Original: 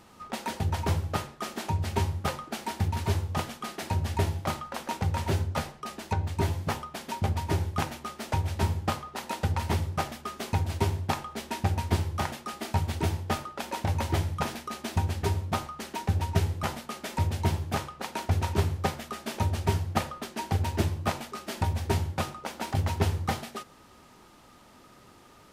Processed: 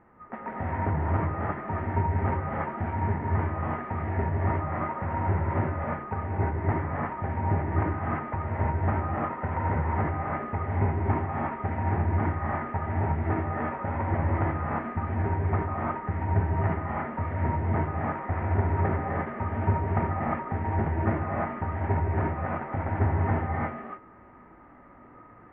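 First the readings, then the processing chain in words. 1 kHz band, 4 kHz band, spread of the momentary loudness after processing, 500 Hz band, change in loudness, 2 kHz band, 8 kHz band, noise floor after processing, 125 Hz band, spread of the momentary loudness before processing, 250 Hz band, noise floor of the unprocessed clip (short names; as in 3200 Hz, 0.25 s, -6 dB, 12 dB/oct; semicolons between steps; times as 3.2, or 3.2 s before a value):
+3.5 dB, under -20 dB, 5 LU, +3.0 dB, +2.0 dB, +2.0 dB, under -40 dB, -51 dBFS, +2.0 dB, 8 LU, +3.5 dB, -55 dBFS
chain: elliptic low-pass 2000 Hz, stop band 60 dB; non-linear reverb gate 0.38 s rising, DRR -6 dB; gain -3 dB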